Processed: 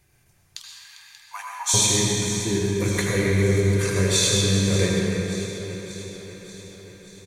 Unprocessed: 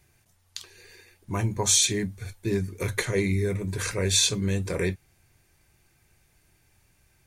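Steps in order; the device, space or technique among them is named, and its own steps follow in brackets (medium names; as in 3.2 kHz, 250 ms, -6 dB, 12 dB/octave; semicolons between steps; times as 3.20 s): cave (delay 399 ms -13 dB; reverberation RT60 2.7 s, pre-delay 72 ms, DRR -2 dB); 0.59–1.74 s: Chebyshev high-pass 820 Hz, order 5; echo whose repeats swap between lows and highs 292 ms, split 2.4 kHz, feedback 77%, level -10 dB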